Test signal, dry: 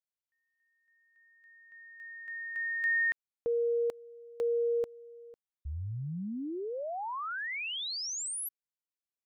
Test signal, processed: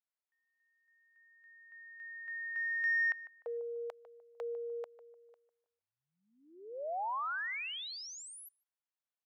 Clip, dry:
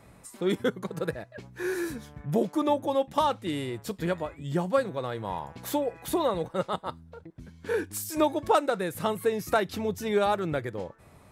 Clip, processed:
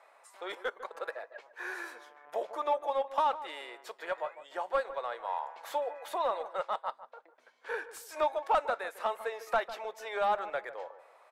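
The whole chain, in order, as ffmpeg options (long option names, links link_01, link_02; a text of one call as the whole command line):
ffmpeg -i in.wav -filter_complex "[0:a]highpass=frequency=600:width=0.5412,highpass=frequency=600:width=1.3066,asplit=2[link_01][link_02];[link_02]highpass=frequency=720:poles=1,volume=14dB,asoftclip=type=tanh:threshold=-11.5dB[link_03];[link_01][link_03]amix=inputs=2:normalize=0,lowpass=frequency=1000:poles=1,volume=-6dB,asplit=2[link_04][link_05];[link_05]adelay=150,lowpass=frequency=1200:poles=1,volume=-12.5dB,asplit=2[link_06][link_07];[link_07]adelay=150,lowpass=frequency=1200:poles=1,volume=0.34,asplit=2[link_08][link_09];[link_09]adelay=150,lowpass=frequency=1200:poles=1,volume=0.34[link_10];[link_04][link_06][link_08][link_10]amix=inputs=4:normalize=0,volume=-4dB" out.wav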